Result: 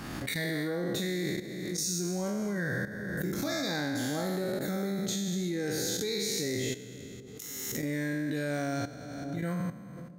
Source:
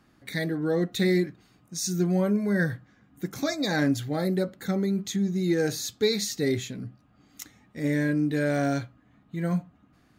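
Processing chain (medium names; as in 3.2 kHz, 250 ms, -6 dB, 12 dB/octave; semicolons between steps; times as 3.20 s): spectral sustain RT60 1.73 s; treble shelf 6.4 kHz +4.5 dB; level held to a coarse grid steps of 14 dB; feedback echo behind a low-pass 535 ms, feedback 43%, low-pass 660 Hz, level -17 dB; swell ahead of each attack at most 27 dB/s; trim -4 dB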